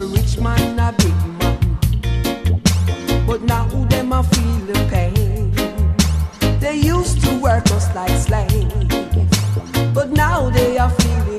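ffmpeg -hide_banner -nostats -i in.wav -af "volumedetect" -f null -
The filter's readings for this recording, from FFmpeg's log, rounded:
mean_volume: -15.7 dB
max_volume: -1.3 dB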